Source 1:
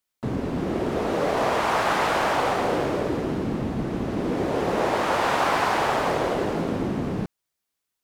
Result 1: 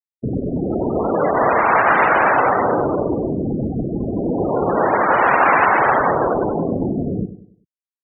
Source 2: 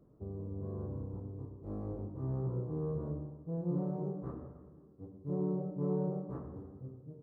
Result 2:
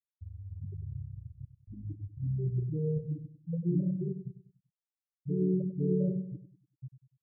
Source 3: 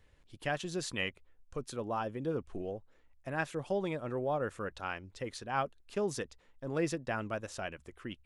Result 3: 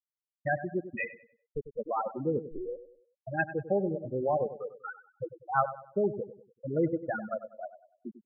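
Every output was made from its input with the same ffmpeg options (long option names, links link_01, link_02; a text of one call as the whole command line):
ffmpeg -i in.wav -filter_complex "[0:a]afftfilt=real='re*gte(hypot(re,im),0.0794)':imag='im*gte(hypot(re,im),0.0794)':win_size=1024:overlap=0.75,adynamicequalizer=threshold=0.01:dfrequency=1800:dqfactor=0.76:tfrequency=1800:tqfactor=0.76:attack=5:release=100:ratio=0.375:range=3.5:mode=boostabove:tftype=bell,asplit=2[link_01][link_02];[link_02]adelay=97,lowpass=frequency=1800:poles=1,volume=-12.5dB,asplit=2[link_03][link_04];[link_04]adelay=97,lowpass=frequency=1800:poles=1,volume=0.4,asplit=2[link_05][link_06];[link_06]adelay=97,lowpass=frequency=1800:poles=1,volume=0.4,asplit=2[link_07][link_08];[link_08]adelay=97,lowpass=frequency=1800:poles=1,volume=0.4[link_09];[link_01][link_03][link_05][link_07][link_09]amix=inputs=5:normalize=0,volume=5dB" out.wav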